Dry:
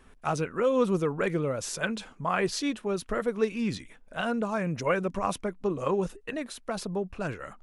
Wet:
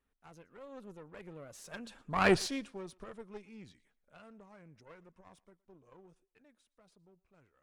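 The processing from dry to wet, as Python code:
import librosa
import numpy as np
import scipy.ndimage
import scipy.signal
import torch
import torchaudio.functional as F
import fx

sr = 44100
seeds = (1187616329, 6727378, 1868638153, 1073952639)

y = fx.diode_clip(x, sr, knee_db=-29.5)
y = fx.doppler_pass(y, sr, speed_mps=18, closest_m=1.2, pass_at_s=2.29)
y = fx.echo_thinned(y, sr, ms=116, feedback_pct=28, hz=420.0, wet_db=-23.0)
y = F.gain(torch.from_numpy(y), 5.0).numpy()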